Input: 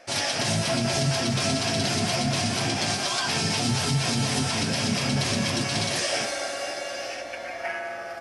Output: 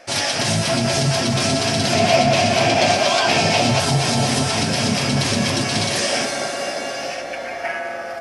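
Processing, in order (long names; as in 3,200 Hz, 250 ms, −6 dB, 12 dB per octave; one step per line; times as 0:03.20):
0:01.93–0:03.80: graphic EQ with 15 bands 630 Hz +11 dB, 2,500 Hz +6 dB, 10,000 Hz −6 dB
on a send: delay with a band-pass on its return 632 ms, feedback 45%, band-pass 530 Hz, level −5.5 dB
on the sum: level +5.5 dB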